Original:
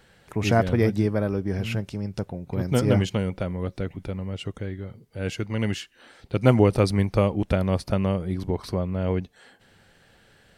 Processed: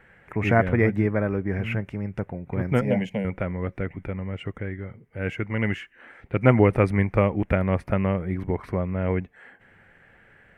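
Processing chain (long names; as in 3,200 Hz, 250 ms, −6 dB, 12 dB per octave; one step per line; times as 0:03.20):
high shelf with overshoot 3,000 Hz −13 dB, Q 3
0:02.81–0:03.25: phaser with its sweep stopped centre 340 Hz, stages 6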